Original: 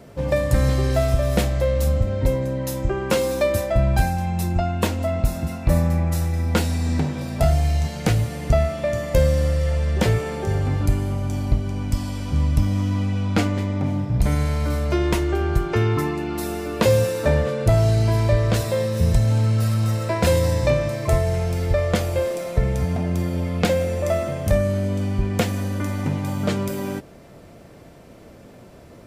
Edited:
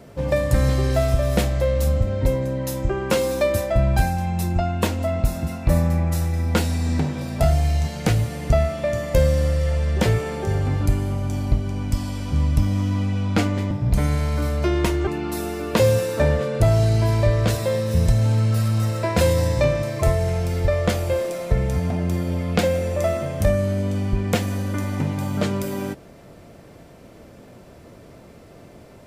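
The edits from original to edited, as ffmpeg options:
ffmpeg -i in.wav -filter_complex "[0:a]asplit=3[link_01][link_02][link_03];[link_01]atrim=end=13.712[link_04];[link_02]atrim=start=13.988:end=15.352[link_05];[link_03]atrim=start=16.128[link_06];[link_04][link_05]acrossfade=duration=0.004:curve1=hsin:curve2=hsin[link_07];[link_07][link_06]acrossfade=duration=0.004:curve1=hsin:curve2=hsin" out.wav

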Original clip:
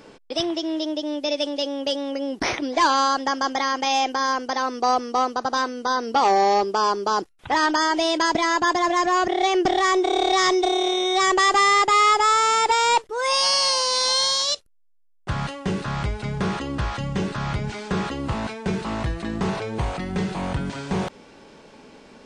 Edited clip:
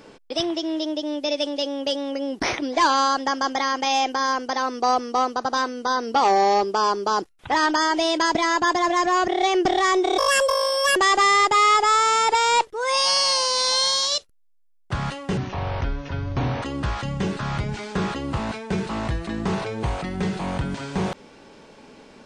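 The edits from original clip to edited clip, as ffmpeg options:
ffmpeg -i in.wav -filter_complex "[0:a]asplit=5[link_01][link_02][link_03][link_04][link_05];[link_01]atrim=end=10.184[link_06];[link_02]atrim=start=10.18:end=11.33,asetpts=PTS-STARTPTS,asetrate=64827,aresample=44100[link_07];[link_03]atrim=start=11.326:end=15.744[link_08];[link_04]atrim=start=15.74:end=16.58,asetpts=PTS-STARTPTS,asetrate=29547,aresample=44100[link_09];[link_05]atrim=start=16.576[link_10];[link_06][link_07]acrossfade=duration=0.004:curve1=hsin:curve2=hsin[link_11];[link_11][link_08]acrossfade=duration=0.004:curve1=hsin:curve2=hsin[link_12];[link_12][link_09]acrossfade=duration=0.004:curve1=hsin:curve2=hsin[link_13];[link_13][link_10]acrossfade=duration=0.004:curve1=hsin:curve2=hsin" out.wav

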